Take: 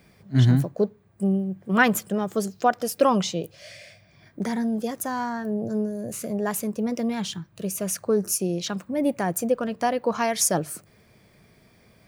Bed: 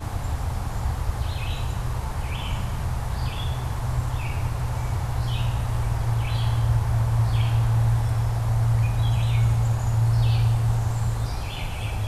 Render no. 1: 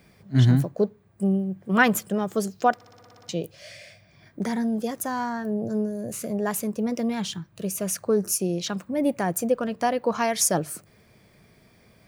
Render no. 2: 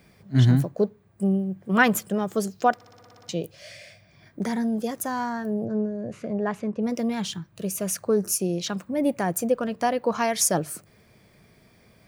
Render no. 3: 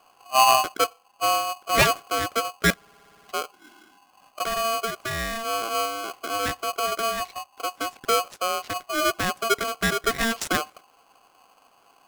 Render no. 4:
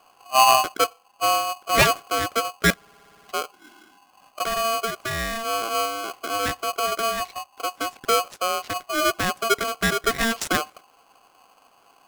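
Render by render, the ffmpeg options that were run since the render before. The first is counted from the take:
-filter_complex "[0:a]asplit=10[a][b][c][d][e][f][g][h][i][j];[a]atrim=end=2.812[k];[b]atrim=start=2.748:end=2.812[l];[c]atrim=start=2.748:end=2.812[m];[d]atrim=start=2.748:end=2.812[n];[e]atrim=start=2.748:end=2.812[o];[f]atrim=start=2.748:end=2.812[p];[g]atrim=start=2.748:end=2.812[q];[h]atrim=start=2.748:end=2.812[r];[i]atrim=start=2.748:end=2.812[s];[j]atrim=start=3.288[t];[k][l]acrossfade=d=0.004:c1=hsin:c2=hsin[u];[u][m]acrossfade=d=0.004:c1=hsin:c2=hsin[v];[v][n]acrossfade=d=0.004:c1=hsin:c2=hsin[w];[w][o]acrossfade=d=0.004:c1=hsin:c2=hsin[x];[x][p]acrossfade=d=0.004:c1=hsin:c2=hsin[y];[y][q]acrossfade=d=0.004:c1=hsin:c2=hsin[z];[z][r]acrossfade=d=0.004:c1=hsin:c2=hsin[aa];[aa][s]acrossfade=d=0.004:c1=hsin:c2=hsin[ab];[ab][t]acrossfade=d=0.004:c1=hsin:c2=hsin"
-filter_complex "[0:a]asettb=1/sr,asplit=3[a][b][c];[a]atrim=end=5.654[d];[b]atrim=start=5.65:end=6.83,asetpts=PTS-STARTPTS,afade=t=in:d=0.004:c=qsin,afade=t=out:st=1.176:d=0.004:c=qsin,lowpass=2.6k[e];[c]atrim=start=6.826[f];[d][e]acrossfade=d=0.004:c1=hsin:c2=qsin[g];[g][f]acrossfade=d=0.004:c1=qsin:c2=hsin"
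-af "adynamicsmooth=sensitivity=2:basefreq=860,aeval=exprs='val(0)*sgn(sin(2*PI*910*n/s))':c=same"
-af "volume=1.5dB"

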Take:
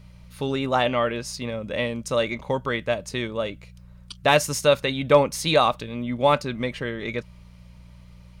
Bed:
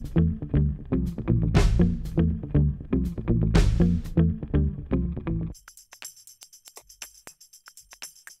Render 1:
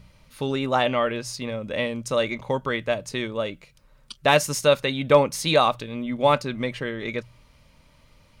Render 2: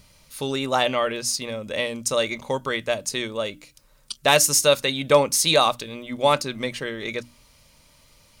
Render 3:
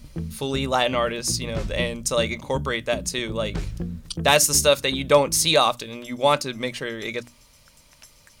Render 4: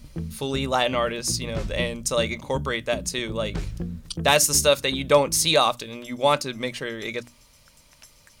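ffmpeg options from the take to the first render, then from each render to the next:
-af "bandreject=f=60:t=h:w=4,bandreject=f=120:t=h:w=4,bandreject=f=180:t=h:w=4"
-af "bass=f=250:g=-3,treble=f=4k:g=12,bandreject=f=60:t=h:w=6,bandreject=f=120:t=h:w=6,bandreject=f=180:t=h:w=6,bandreject=f=240:t=h:w=6,bandreject=f=300:t=h:w=6"
-filter_complex "[1:a]volume=-9.5dB[a];[0:a][a]amix=inputs=2:normalize=0"
-af "volume=-1dB,alimiter=limit=-3dB:level=0:latency=1"

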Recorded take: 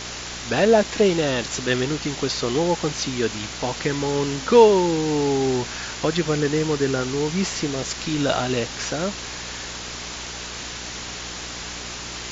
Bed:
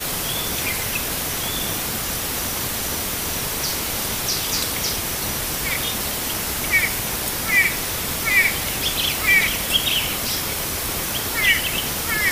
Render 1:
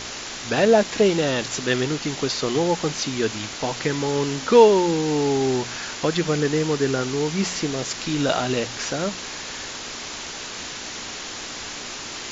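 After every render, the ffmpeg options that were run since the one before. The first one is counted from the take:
-af "bandreject=f=60:t=h:w=4,bandreject=f=120:t=h:w=4,bandreject=f=180:t=h:w=4"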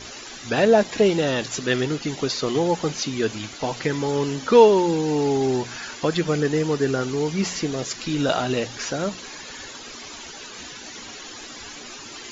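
-af "afftdn=nr=13:nf=-34"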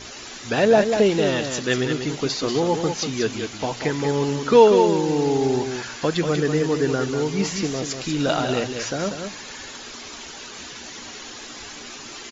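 -af "aecho=1:1:191:0.447"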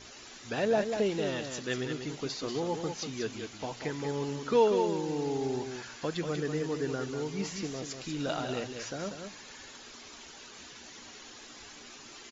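-af "volume=-11.5dB"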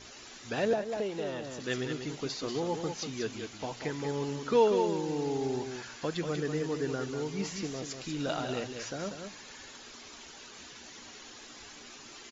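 -filter_complex "[0:a]asettb=1/sr,asplit=3[a][b][c];[a]atrim=end=0.734[d];[b]atrim=start=0.73:end=1.6,asetpts=PTS-STARTPTS,afade=t=in:d=0.004:c=qsin,afade=t=out:st=0.866:d=0.004:c=qsin,acrossover=split=460|1300[e][f][g];[e]acompressor=threshold=-39dB:ratio=4[h];[f]acompressor=threshold=-31dB:ratio=4[i];[g]acompressor=threshold=-47dB:ratio=4[j];[h][i][j]amix=inputs=3:normalize=0[k];[c]atrim=start=1.596[l];[d][k]acrossfade=d=0.004:c1=hsin:c2=qsin[m];[m][l]acrossfade=d=0.004:c1=qsin:c2=hsin"

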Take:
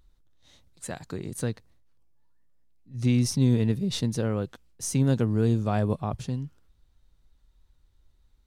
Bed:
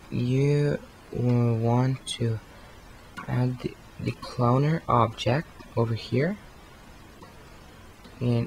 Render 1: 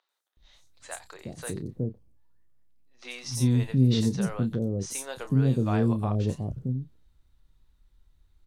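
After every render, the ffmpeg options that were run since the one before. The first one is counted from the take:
-filter_complex "[0:a]asplit=2[a][b];[b]adelay=31,volume=-10.5dB[c];[a][c]amix=inputs=2:normalize=0,acrossover=split=550|5800[d][e][f];[f]adelay=90[g];[d]adelay=370[h];[h][e][g]amix=inputs=3:normalize=0"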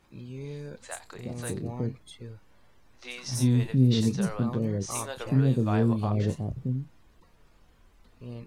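-filter_complex "[1:a]volume=-16dB[a];[0:a][a]amix=inputs=2:normalize=0"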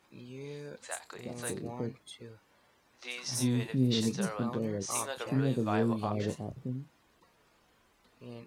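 -af "highpass=f=340:p=1"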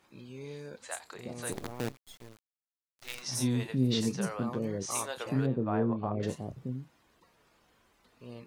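-filter_complex "[0:a]asplit=3[a][b][c];[a]afade=t=out:st=1.51:d=0.02[d];[b]acrusher=bits=6:dc=4:mix=0:aa=0.000001,afade=t=in:st=1.51:d=0.02,afade=t=out:st=3.21:d=0.02[e];[c]afade=t=in:st=3.21:d=0.02[f];[d][e][f]amix=inputs=3:normalize=0,asettb=1/sr,asplit=3[g][h][i];[g]atrim=end=3.984[j];[h]atrim=start=3.98:end=4.64,asetpts=PTS-STARTPTS,afade=t=in:d=0.004:c=qsin,afade=t=out:st=0.656:d=0.004:c=qsin,equalizer=f=3.8k:t=o:w=0.25:g=-7[k];[i]atrim=start=4.636[l];[j][k]acrossfade=d=0.004:c1=hsin:c2=qsin[m];[m][l]acrossfade=d=0.004:c1=qsin:c2=hsin,asettb=1/sr,asplit=3[n][o][p];[n]atrim=end=5.464[q];[o]atrim=start=5.46:end=6.23,asetpts=PTS-STARTPTS,afade=t=in:d=0.004:c=qsin,afade=t=out:st=0.766:d=0.004:c=qsin,lowpass=1.4k[r];[p]atrim=start=6.226[s];[q][r]acrossfade=d=0.004:c1=hsin:c2=qsin[t];[t][s]acrossfade=d=0.004:c1=qsin:c2=hsin"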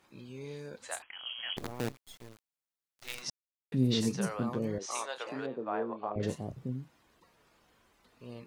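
-filter_complex "[0:a]asettb=1/sr,asplit=3[a][b][c];[a]atrim=end=1.024[d];[b]atrim=start=1.02:end=1.57,asetpts=PTS-STARTPTS,afade=t=in:d=0.004:c=qsin,afade=t=out:st=0.546:d=0.004:c=qsin,lowpass=f=2.9k:t=q:w=0.5098,lowpass=f=2.9k:t=q:w=0.6013,lowpass=f=2.9k:t=q:w=0.9,lowpass=f=2.9k:t=q:w=2.563,afreqshift=-3400[e];[c]atrim=start=1.566[f];[d][e]acrossfade=d=0.004:c1=hsin:c2=qsin[g];[g][f]acrossfade=d=0.004:c1=qsin:c2=hsin,asettb=1/sr,asplit=3[h][i][j];[h]atrim=end=4.784[k];[i]atrim=start=4.78:end=6.16,asetpts=PTS-STARTPTS,afade=t=in:d=0.004:c=qsin,afade=t=out:st=1.376:d=0.004:c=qsin,highpass=450,lowpass=6.2k[l];[j]atrim=start=6.156[m];[k][l]acrossfade=d=0.004:c1=hsin:c2=qsin[n];[n][m]acrossfade=d=0.004:c1=qsin:c2=hsin,asplit=3[o][p][q];[o]atrim=end=3.3,asetpts=PTS-STARTPTS,afade=t=out:st=3.296:d=0.004:c=hsin[r];[p]atrim=start=3.3:end=3.72,asetpts=PTS-STARTPTS,volume=0[s];[q]atrim=start=3.72,asetpts=PTS-STARTPTS,afade=t=in:d=0.004:c=hsin[t];[r][s][t]concat=n=3:v=0:a=1"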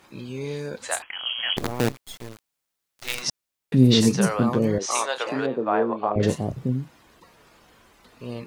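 -af "volume=12dB"

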